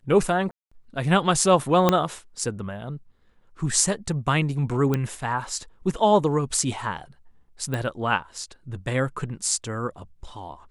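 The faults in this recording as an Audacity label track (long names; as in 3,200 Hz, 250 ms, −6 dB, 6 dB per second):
0.510000	0.710000	drop-out 205 ms
1.890000	1.890000	click −4 dBFS
4.940000	4.940000	click −11 dBFS
7.740000	7.740000	click −15 dBFS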